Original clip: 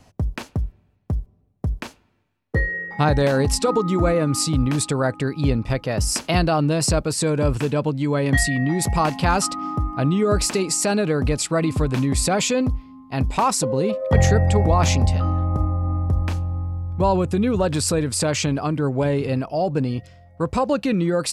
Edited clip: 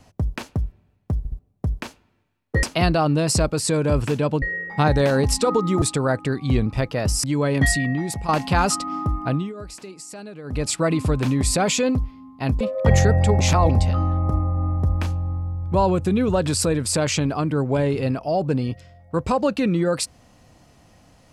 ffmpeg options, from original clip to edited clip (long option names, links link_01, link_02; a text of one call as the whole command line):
ffmpeg -i in.wav -filter_complex "[0:a]asplit=16[link_01][link_02][link_03][link_04][link_05][link_06][link_07][link_08][link_09][link_10][link_11][link_12][link_13][link_14][link_15][link_16];[link_01]atrim=end=1.252[link_17];[link_02]atrim=start=1.178:end=1.252[link_18];[link_03]atrim=start=1.178:end=1.252[link_19];[link_04]atrim=start=1.388:end=2.632[link_20];[link_05]atrim=start=6.158:end=7.952[link_21];[link_06]atrim=start=2.628:end=4.032[link_22];[link_07]atrim=start=4.768:end=5.304[link_23];[link_08]atrim=start=5.3:end=5.59,asetpts=PTS-STARTPTS,asetrate=40572,aresample=44100,atrim=end_sample=13901,asetpts=PTS-STARTPTS[link_24];[link_09]atrim=start=5.586:end=6.162[link_25];[link_10]atrim=start=7.948:end=9,asetpts=PTS-STARTPTS,afade=type=out:start_time=0.542:duration=0.51:silence=0.251189[link_26];[link_11]atrim=start=9:end=10.24,asetpts=PTS-STARTPTS,afade=type=in:duration=0.004:curve=hsin:silence=0.251189,afade=type=out:start_time=0.98:duration=0.26:silence=0.141254[link_27];[link_12]atrim=start=10.24:end=11.15,asetpts=PTS-STARTPTS,volume=-17dB[link_28];[link_13]atrim=start=11.15:end=13.322,asetpts=PTS-STARTPTS,afade=type=in:duration=0.26:silence=0.141254[link_29];[link_14]atrim=start=13.868:end=14.672[link_30];[link_15]atrim=start=14.668:end=14.962,asetpts=PTS-STARTPTS,areverse[link_31];[link_16]atrim=start=14.958[link_32];[link_17][link_18]acrossfade=duration=0.004:curve1=hsin:curve2=hsin[link_33];[link_33][link_19]acrossfade=duration=0.004:curve1=hsin:curve2=hsin[link_34];[link_34][link_20]acrossfade=duration=0.004:curve1=hsin:curve2=hsin[link_35];[link_35][link_21]acrossfade=duration=0.004:curve1=hsin:curve2=hsin[link_36];[link_36][link_22]acrossfade=duration=0.004:curve1=hsin:curve2=hsin[link_37];[link_37][link_23]acrossfade=duration=0.004:curve1=hsin:curve2=hsin[link_38];[link_38][link_24]acrossfade=duration=0.004:curve1=hsin:curve2=hsin[link_39];[link_39][link_25]acrossfade=duration=0.004:curve1=hsin:curve2=hsin[link_40];[link_26][link_27][link_28][link_29]concat=n=4:v=0:a=1[link_41];[link_40][link_41]acrossfade=duration=0.004:curve1=hsin:curve2=hsin[link_42];[link_42][link_30]acrossfade=duration=0.004:curve1=hsin:curve2=hsin[link_43];[link_43][link_31]acrossfade=duration=0.004:curve1=hsin:curve2=hsin[link_44];[link_44][link_32]acrossfade=duration=0.004:curve1=hsin:curve2=hsin" out.wav